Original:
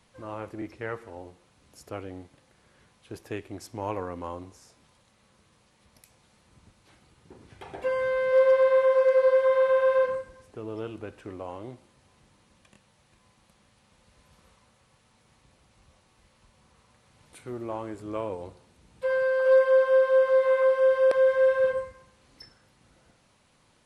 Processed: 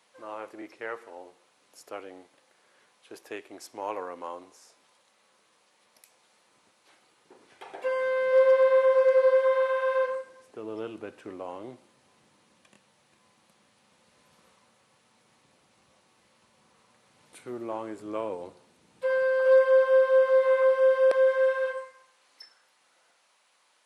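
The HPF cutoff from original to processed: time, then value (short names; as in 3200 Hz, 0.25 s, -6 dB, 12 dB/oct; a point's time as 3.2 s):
7.83 s 430 Hz
8.6 s 190 Hz
9.12 s 190 Hz
9.77 s 740 Hz
10.74 s 200 Hz
20.9 s 200 Hz
21.67 s 730 Hz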